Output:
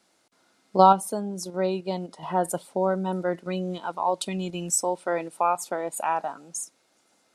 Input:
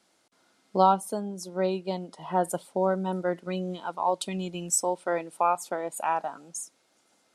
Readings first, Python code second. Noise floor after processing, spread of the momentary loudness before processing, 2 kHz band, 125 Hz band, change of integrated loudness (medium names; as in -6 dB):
-67 dBFS, 11 LU, +1.5 dB, +2.5 dB, +2.5 dB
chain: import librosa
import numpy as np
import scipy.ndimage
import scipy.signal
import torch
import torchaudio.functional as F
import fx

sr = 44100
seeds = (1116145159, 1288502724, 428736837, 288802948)

p1 = fx.notch(x, sr, hz=3200.0, q=29.0)
p2 = fx.level_steps(p1, sr, step_db=21)
y = p1 + (p2 * 10.0 ** (0.0 / 20.0))